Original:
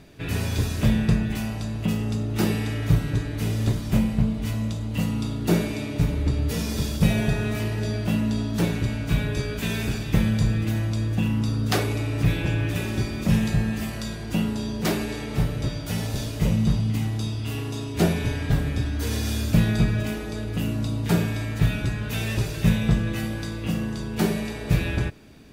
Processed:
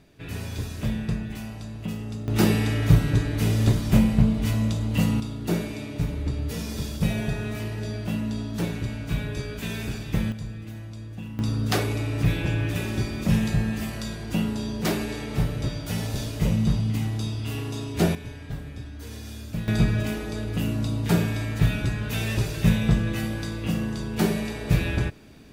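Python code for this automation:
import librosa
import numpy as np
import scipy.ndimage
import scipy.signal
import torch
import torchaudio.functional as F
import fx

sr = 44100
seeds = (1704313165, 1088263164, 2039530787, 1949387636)

y = fx.gain(x, sr, db=fx.steps((0.0, -7.0), (2.28, 3.0), (5.2, -4.5), (10.32, -13.0), (11.39, -1.0), (18.15, -12.0), (19.68, 0.0)))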